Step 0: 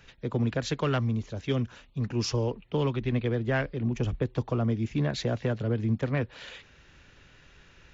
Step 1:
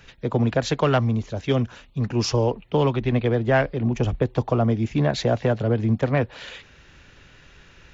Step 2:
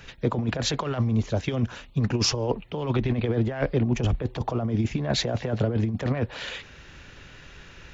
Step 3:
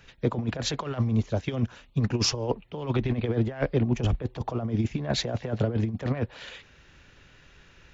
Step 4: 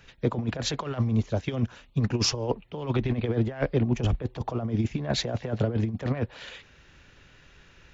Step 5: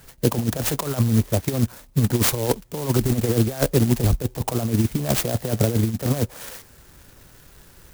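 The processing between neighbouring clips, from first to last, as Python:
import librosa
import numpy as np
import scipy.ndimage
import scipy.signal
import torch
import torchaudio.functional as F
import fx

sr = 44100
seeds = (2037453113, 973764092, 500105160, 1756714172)

y1 = fx.dynamic_eq(x, sr, hz=730.0, q=1.5, threshold_db=-46.0, ratio=4.0, max_db=7)
y1 = y1 * 10.0 ** (5.5 / 20.0)
y2 = fx.over_compress(y1, sr, threshold_db=-23.0, ratio=-0.5)
y3 = fx.upward_expand(y2, sr, threshold_db=-36.0, expansion=1.5)
y4 = y3
y5 = fx.clock_jitter(y4, sr, seeds[0], jitter_ms=0.12)
y5 = y5 * 10.0 ** (6.0 / 20.0)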